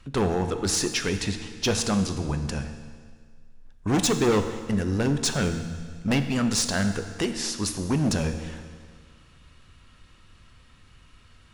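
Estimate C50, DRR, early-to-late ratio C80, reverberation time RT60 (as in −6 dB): 9.0 dB, 7.5 dB, 10.0 dB, 1.8 s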